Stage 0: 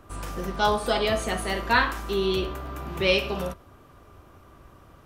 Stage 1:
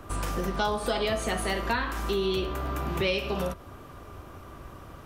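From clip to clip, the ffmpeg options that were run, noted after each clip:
-filter_complex "[0:a]acrossover=split=410[s0][s1];[s1]alimiter=limit=0.2:level=0:latency=1:release=307[s2];[s0][s2]amix=inputs=2:normalize=0,acompressor=threshold=0.02:ratio=3,volume=2.11"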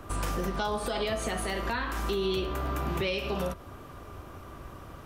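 -af "alimiter=limit=0.0891:level=0:latency=1:release=112"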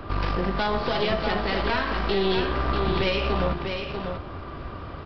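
-af "aresample=11025,aeval=exprs='clip(val(0),-1,0.0178)':c=same,aresample=44100,aecho=1:1:643:0.501,volume=2.37"

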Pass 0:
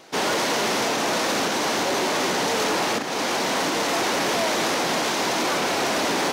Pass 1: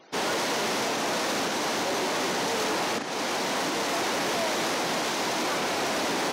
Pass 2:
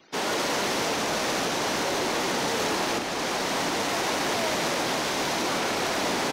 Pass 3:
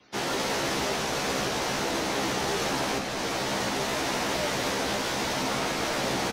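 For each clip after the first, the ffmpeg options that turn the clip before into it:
-af "afftfilt=real='re*gte(hypot(re,im),0.00355)':imag='im*gte(hypot(re,im),0.00355)':win_size=1024:overlap=0.75,volume=0.596"
-filter_complex "[0:a]acrossover=split=380|1300|5800[s0][s1][s2][s3];[s1]aeval=exprs='sgn(val(0))*max(abs(val(0))-0.00106,0)':c=same[s4];[s0][s4][s2][s3]amix=inputs=4:normalize=0,asplit=8[s5][s6][s7][s8][s9][s10][s11][s12];[s6]adelay=145,afreqshift=-44,volume=0.447[s13];[s7]adelay=290,afreqshift=-88,volume=0.24[s14];[s8]adelay=435,afreqshift=-132,volume=0.13[s15];[s9]adelay=580,afreqshift=-176,volume=0.07[s16];[s10]adelay=725,afreqshift=-220,volume=0.038[s17];[s11]adelay=870,afreqshift=-264,volume=0.0204[s18];[s12]adelay=1015,afreqshift=-308,volume=0.0111[s19];[s5][s13][s14][s15][s16][s17][s18][s19]amix=inputs=8:normalize=0"
-filter_complex "[0:a]afreqshift=-60,asplit=2[s0][s1];[s1]adelay=15,volume=0.708[s2];[s0][s2]amix=inputs=2:normalize=0,volume=0.668"

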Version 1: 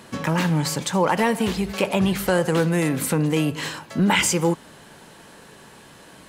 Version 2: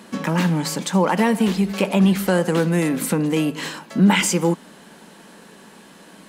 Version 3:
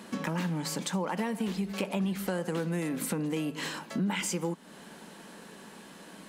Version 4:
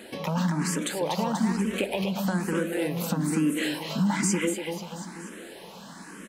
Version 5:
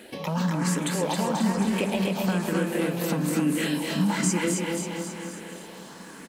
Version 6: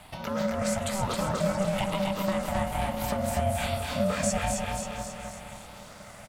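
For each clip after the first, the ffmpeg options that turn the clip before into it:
-af "lowshelf=f=150:t=q:w=3:g=-8"
-af "acompressor=threshold=0.0398:ratio=3,volume=0.668"
-filter_complex "[0:a]aecho=1:1:242|484|726|968|1210|1452|1694:0.562|0.292|0.152|0.0791|0.0411|0.0214|0.0111,asplit=2[s0][s1];[s1]afreqshift=1.1[s2];[s0][s2]amix=inputs=2:normalize=1,volume=2.11"
-af "aeval=exprs='sgn(val(0))*max(abs(val(0))-0.00133,0)':c=same,aecho=1:1:269|538|807|1076|1345|1614|1883:0.596|0.322|0.174|0.0938|0.0506|0.0274|0.0148"
-af "aeval=exprs='val(0)*sin(2*PI*390*n/s)':c=same"

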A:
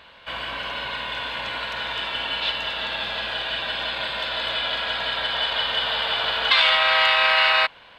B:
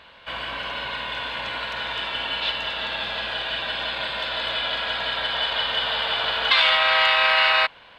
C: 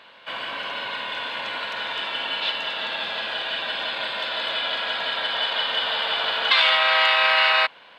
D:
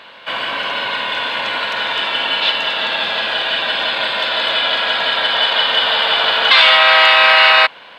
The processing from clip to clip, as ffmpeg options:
-af "highshelf=f=7700:g=-4"
-af "highpass=200"
-af "apsyclip=3.76,volume=0.794"

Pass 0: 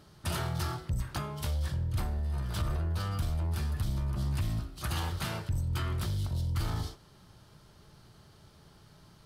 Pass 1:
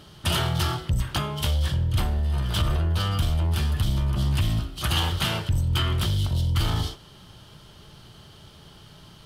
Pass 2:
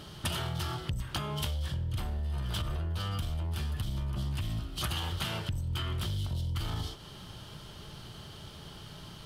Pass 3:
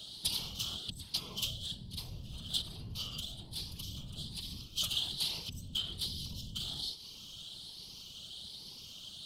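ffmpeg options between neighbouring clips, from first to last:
-af "equalizer=f=3100:w=3.5:g=10.5,volume=2.51"
-af "acompressor=threshold=0.0251:ratio=12,volume=1.19"
-af "afftfilt=real='re*pow(10,7/40*sin(2*PI*(0.83*log(max(b,1)*sr/1024/100)/log(2)-(1.2)*(pts-256)/sr)))':imag='im*pow(10,7/40*sin(2*PI*(0.83*log(max(b,1)*sr/1024/100)/log(2)-(1.2)*(pts-256)/sr)))':win_size=1024:overlap=0.75,highshelf=f=2600:t=q:w=3:g=13.5,afftfilt=real='hypot(re,im)*cos(2*PI*random(0))':imag='hypot(re,im)*sin(2*PI*random(1))':win_size=512:overlap=0.75,volume=0.422"

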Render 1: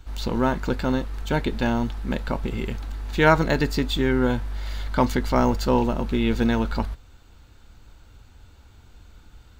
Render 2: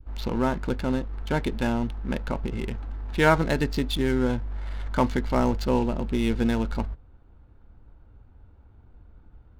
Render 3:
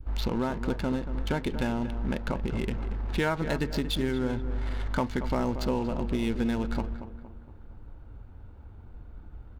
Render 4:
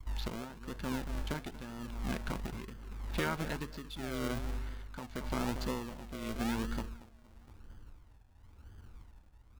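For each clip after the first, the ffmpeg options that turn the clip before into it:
-af "adynamicsmooth=sensitivity=8:basefreq=950,adynamicequalizer=threshold=0.0158:dfrequency=1200:dqfactor=0.76:tfrequency=1200:tqfactor=0.76:attack=5:release=100:ratio=0.375:range=2.5:mode=cutabove:tftype=bell,volume=0.794"
-filter_complex "[0:a]acompressor=threshold=0.0282:ratio=4,asplit=2[s0][s1];[s1]adelay=232,lowpass=f=1900:p=1,volume=0.299,asplit=2[s2][s3];[s3]adelay=232,lowpass=f=1900:p=1,volume=0.47,asplit=2[s4][s5];[s5]adelay=232,lowpass=f=1900:p=1,volume=0.47,asplit=2[s6][s7];[s7]adelay=232,lowpass=f=1900:p=1,volume=0.47,asplit=2[s8][s9];[s9]adelay=232,lowpass=f=1900:p=1,volume=0.47[s10];[s2][s4][s6][s8][s10]amix=inputs=5:normalize=0[s11];[s0][s11]amix=inputs=2:normalize=0,volume=1.78"
-filter_complex "[0:a]tremolo=f=0.91:d=0.72,acrossover=split=630|4600[s0][s1][s2];[s0]acrusher=samples=40:mix=1:aa=0.000001:lfo=1:lforange=24:lforate=1[s3];[s3][s1][s2]amix=inputs=3:normalize=0,volume=0.531"

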